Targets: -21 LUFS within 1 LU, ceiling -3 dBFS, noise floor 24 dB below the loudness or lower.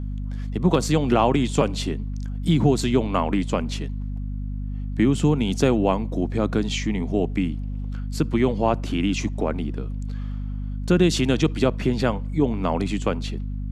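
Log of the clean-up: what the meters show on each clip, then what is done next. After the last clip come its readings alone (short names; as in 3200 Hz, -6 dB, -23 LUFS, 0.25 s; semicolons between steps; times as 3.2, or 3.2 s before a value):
hum 50 Hz; harmonics up to 250 Hz; hum level -26 dBFS; loudness -23.5 LUFS; peak -5.5 dBFS; loudness target -21.0 LUFS
-> de-hum 50 Hz, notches 5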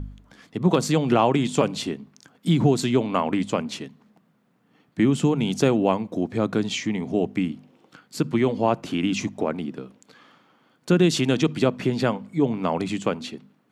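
hum none; loudness -23.5 LUFS; peak -6.0 dBFS; loudness target -21.0 LUFS
-> gain +2.5 dB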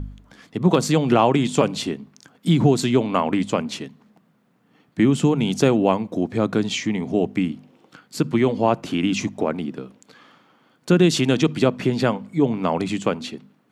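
loudness -21.0 LUFS; peak -3.5 dBFS; noise floor -61 dBFS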